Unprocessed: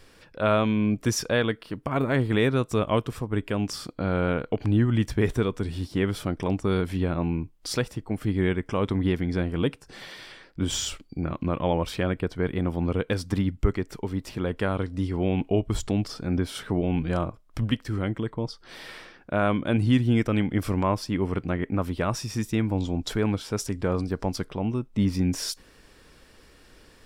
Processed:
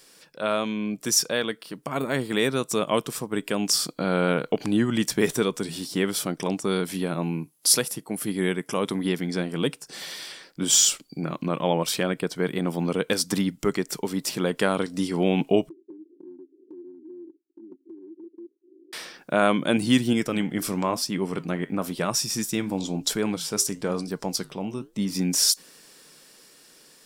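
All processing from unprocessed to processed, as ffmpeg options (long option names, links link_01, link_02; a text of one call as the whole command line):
ffmpeg -i in.wav -filter_complex "[0:a]asettb=1/sr,asplit=3[link_01][link_02][link_03];[link_01]atrim=end=6.944[link_04];[link_02]atrim=start=6.94:end=9.09,asetpts=PTS-STARTPTS,afade=type=in:duration=0.004:curve=qsin,afade=type=out:start_time=2.146:duration=0.004:curve=qsin,highpass=55,equalizer=frequency=11000:width_type=o:width=0.29:gain=13.5[link_05];[link_03]atrim=start=9.086[link_06];[link_04][link_05]acrossfade=duration=0.004:curve1=hsin:curve2=qsin[link_07];[link_07][link_06]acrossfade=duration=0.004:curve1=qsin:curve2=hsin,asettb=1/sr,asplit=3[link_08][link_09][link_10];[link_08]atrim=end=15.694[link_11];[link_09]atrim=start=15.69:end=18.93,asetpts=PTS-STARTPTS,afade=type=in:duration=0.004:curve=qsin,afade=type=out:start_time=3.236:duration=0.004:curve=qsin,asuperpass=centerf=320:order=8:qfactor=2.6,acompressor=threshold=-44dB:ratio=12:attack=3.2:release=140:knee=1:detection=peak,aecho=1:1:5.6:0.52,atrim=end_sample=142884[link_12];[link_10]atrim=start=18.926[link_13];[link_11][link_12]acrossfade=duration=0.004:curve1=hsin:curve2=qsin[link_14];[link_14][link_13]acrossfade=duration=0.004:curve1=qsin:curve2=hsin,asettb=1/sr,asplit=3[link_15][link_16][link_17];[link_15]atrim=end=20.134[link_18];[link_16]atrim=start=20.13:end=25.16,asetpts=PTS-STARTPTS,afade=type=in:duration=0.004:curve=qsin,afade=type=out:start_time=5.026:duration=0.004:curve=qsin,lowshelf=frequency=91:gain=9,flanger=delay=5:depth=6.2:regen=-79:speed=1:shape=sinusoidal[link_19];[link_17]atrim=start=25.156[link_20];[link_18][link_19]acrossfade=duration=0.004:curve1=hsin:curve2=qsin[link_21];[link_21][link_20]acrossfade=duration=0.004:curve1=qsin:curve2=hsin,bass=frequency=250:gain=-10,treble=frequency=4000:gain=14,dynaudnorm=framelen=650:gausssize=7:maxgain=8dB,lowshelf=frequency=110:width_type=q:width=3:gain=-12,volume=-3dB" out.wav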